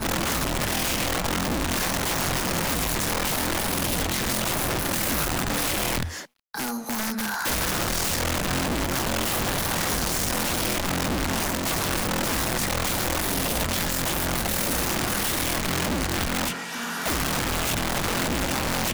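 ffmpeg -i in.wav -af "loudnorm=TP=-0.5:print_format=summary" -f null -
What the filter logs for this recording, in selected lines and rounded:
Input Integrated:    -24.8 LUFS
Input True Peak:     -15.2 dBTP
Input LRA:             1.3 LU
Input Threshold:     -34.8 LUFS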